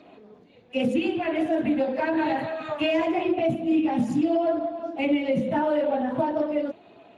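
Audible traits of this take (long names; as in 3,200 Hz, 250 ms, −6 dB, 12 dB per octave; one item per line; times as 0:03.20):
Speex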